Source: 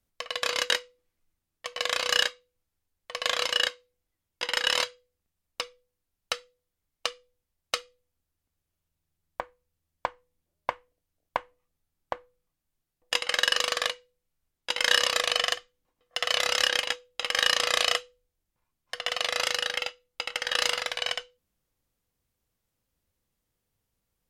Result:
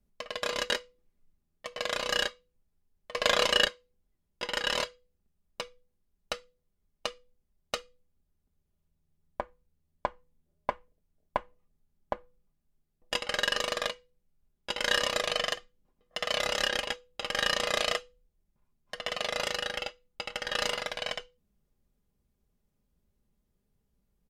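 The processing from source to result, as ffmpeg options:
-filter_complex "[0:a]asettb=1/sr,asplit=3[a][b][c];[a]atrim=end=3.154[d];[b]atrim=start=3.15:end=3.65,asetpts=PTS-STARTPTS,afade=t=in:d=0.004:c=qsin,afade=t=out:st=0.496:d=0.004:c=qsin,acontrast=75[e];[c]atrim=start=3.646[f];[d][e]acrossfade=d=0.004:c1=hsin:c2=qsin[g];[g][f]acrossfade=d=0.004:c1=qsin:c2=hsin,tiltshelf=f=640:g=7.5,aecho=1:1:4.9:0.52"

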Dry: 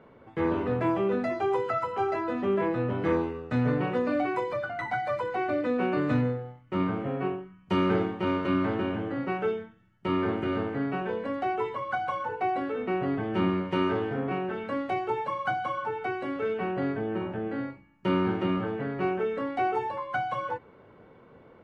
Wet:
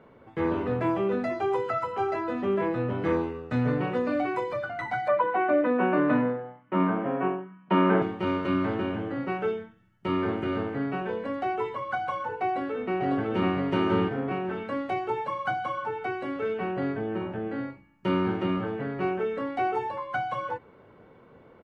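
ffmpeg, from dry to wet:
-filter_complex "[0:a]asettb=1/sr,asplit=3[a][b][c];[a]atrim=end=5.084[d];[b]atrim=start=5.08:end=8.02,asetpts=PTS-STARTPTS,afade=t=in:d=0.004:c=qsin,afade=t=out:st=2.936:d=0.004:c=qsin,highpass=f=160:w=0.5412,highpass=f=160:w=1.3066,equalizer=f=190:t=q:w=4:g=4,equalizer=f=300:t=q:w=4:g=4,equalizer=f=630:t=q:w=4:g=8,equalizer=f=1k:t=q:w=4:g=9,equalizer=f=1.6k:t=q:w=4:g=6,lowpass=f=3.2k:w=0.5412,lowpass=f=3.2k:w=1.3066[e];[c]atrim=start=8.016[f];[d][e]acrossfade=d=0.004:c1=hsin:c2=qsin[g];[g][f]acrossfade=d=0.004:c1=qsin:c2=hsin,asplit=2[h][i];[i]afade=t=in:st=12.45:d=0.01,afade=t=out:st=13.53:d=0.01,aecho=0:1:550|1100|1650:0.841395|0.126209|0.0189314[j];[h][j]amix=inputs=2:normalize=0"

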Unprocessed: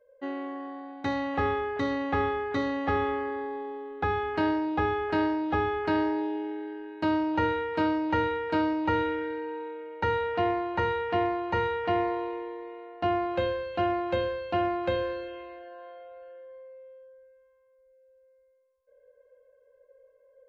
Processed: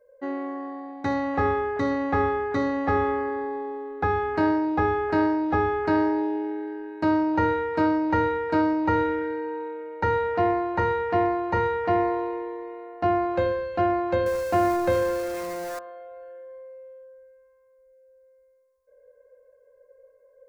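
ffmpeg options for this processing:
-filter_complex "[0:a]asettb=1/sr,asplit=3[a][b][c];[a]atrim=end=14.264[d];[b]atrim=start=14.26:end=15.79,asetpts=PTS-STARTPTS,afade=t=in:d=0.004:c=qsin,afade=t=out:st=1.526:d=0.004:c=qsin,aeval=exprs='val(0)+0.5*0.0211*sgn(val(0))':c=same[e];[c]atrim=start=15.786[f];[d][e]acrossfade=d=0.004:c1=hsin:c2=qsin[g];[g][f]acrossfade=d=0.004:c1=qsin:c2=hsin,equalizer=f=3.1k:t=o:w=0.73:g=-11.5,bandreject=f=67.59:t=h:w=4,bandreject=f=135.18:t=h:w=4,bandreject=f=202.77:t=h:w=4,bandreject=f=270.36:t=h:w=4,bandreject=f=337.95:t=h:w=4,bandreject=f=405.54:t=h:w=4,bandreject=f=473.13:t=h:w=4,bandreject=f=540.72:t=h:w=4,bandreject=f=608.31:t=h:w=4,bandreject=f=675.9:t=h:w=4,bandreject=f=743.49:t=h:w=4,bandreject=f=811.08:t=h:w=4,bandreject=f=878.67:t=h:w=4,bandreject=f=946.26:t=h:w=4,bandreject=f=1.01385k:t=h:w=4,bandreject=f=1.08144k:t=h:w=4,bandreject=f=1.14903k:t=h:w=4,bandreject=f=1.21662k:t=h:w=4,bandreject=f=1.28421k:t=h:w=4,bandreject=f=1.3518k:t=h:w=4,bandreject=f=1.41939k:t=h:w=4,bandreject=f=1.48698k:t=h:w=4,bandreject=f=1.55457k:t=h:w=4,volume=4.5dB"

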